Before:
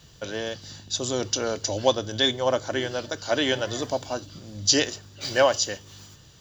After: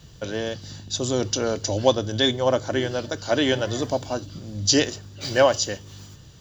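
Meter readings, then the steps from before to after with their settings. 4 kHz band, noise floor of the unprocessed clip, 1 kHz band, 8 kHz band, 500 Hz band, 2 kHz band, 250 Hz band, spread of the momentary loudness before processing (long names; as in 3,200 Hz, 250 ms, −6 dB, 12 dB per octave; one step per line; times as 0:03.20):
0.0 dB, −52 dBFS, +1.5 dB, 0.0 dB, +3.0 dB, +0.5 dB, +5.0 dB, 13 LU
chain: low-shelf EQ 420 Hz +7 dB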